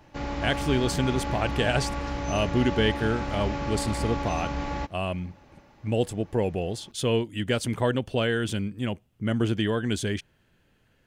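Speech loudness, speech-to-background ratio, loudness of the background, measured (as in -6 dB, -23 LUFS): -28.0 LUFS, 3.5 dB, -31.5 LUFS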